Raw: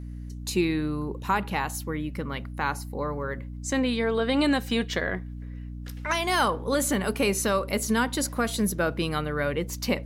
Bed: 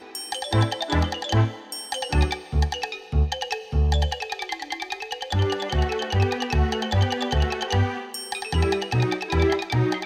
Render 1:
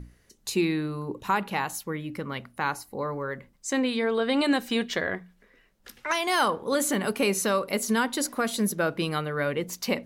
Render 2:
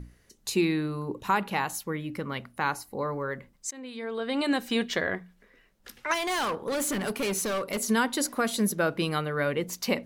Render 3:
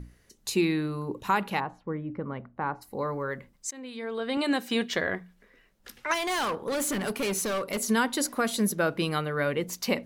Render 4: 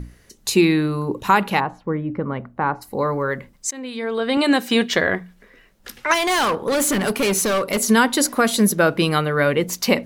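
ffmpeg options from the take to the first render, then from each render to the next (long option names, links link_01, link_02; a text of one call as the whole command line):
ffmpeg -i in.wav -af "bandreject=frequency=60:width_type=h:width=6,bandreject=frequency=120:width_type=h:width=6,bandreject=frequency=180:width_type=h:width=6,bandreject=frequency=240:width_type=h:width=6,bandreject=frequency=300:width_type=h:width=6" out.wav
ffmpeg -i in.wav -filter_complex "[0:a]asettb=1/sr,asplit=3[link_01][link_02][link_03];[link_01]atrim=end=6.144[link_04];[link_02]atrim=start=6.14:end=7.8,asetpts=PTS-STARTPTS,afade=type=in:duration=0.004:curve=qsin,afade=type=out:start_time=1.656:duration=0.004:curve=qsin,asoftclip=type=hard:threshold=-26dB[link_05];[link_03]atrim=start=7.796[link_06];[link_04][link_05]acrossfade=duration=0.004:curve1=hsin:curve2=qsin[link_07];[link_07][link_06]acrossfade=duration=0.004:curve1=qsin:curve2=hsin,asplit=2[link_08][link_09];[link_08]atrim=end=3.71,asetpts=PTS-STARTPTS,afade=type=out:start_time=3.706:duration=0.004:curve=hsin:silence=0.0630957[link_10];[link_09]atrim=start=3.71,asetpts=PTS-STARTPTS,afade=type=in:duration=1.12:silence=0.0630957[link_11];[link_10][link_11]concat=n=2:v=0:a=1" out.wav
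ffmpeg -i in.wav -filter_complex "[0:a]asplit=3[link_01][link_02][link_03];[link_01]afade=type=out:start_time=1.59:duration=0.02[link_04];[link_02]lowpass=1100,afade=type=in:start_time=1.59:duration=0.02,afade=type=out:start_time=2.81:duration=0.02[link_05];[link_03]afade=type=in:start_time=2.81:duration=0.02[link_06];[link_04][link_05][link_06]amix=inputs=3:normalize=0,asettb=1/sr,asplit=3[link_07][link_08][link_09];[link_07]atrim=end=4.374[link_10];[link_08]atrim=start=4.37:end=4.93,asetpts=PTS-STARTPTS,afade=type=in:duration=0.004:curve=qsin,afade=type=out:start_time=0.556:duration=0.004:curve=qsin,highpass=140[link_11];[link_09]atrim=start=4.926[link_12];[link_10][link_11]acrossfade=duration=0.004:curve1=hsin:curve2=qsin[link_13];[link_13][link_12]acrossfade=duration=0.004:curve1=qsin:curve2=hsin" out.wav
ffmpeg -i in.wav -af "volume=9.5dB" out.wav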